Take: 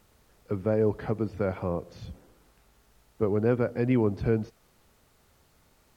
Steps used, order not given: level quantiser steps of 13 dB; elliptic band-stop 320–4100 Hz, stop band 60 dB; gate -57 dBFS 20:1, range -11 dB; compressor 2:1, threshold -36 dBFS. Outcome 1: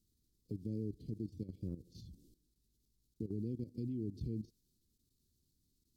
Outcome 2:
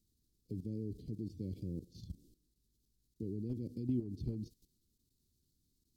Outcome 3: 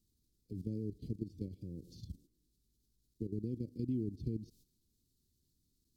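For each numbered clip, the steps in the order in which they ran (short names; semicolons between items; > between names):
compressor > gate > elliptic band-stop > level quantiser; gate > elliptic band-stop > level quantiser > compressor; level quantiser > gate > compressor > elliptic band-stop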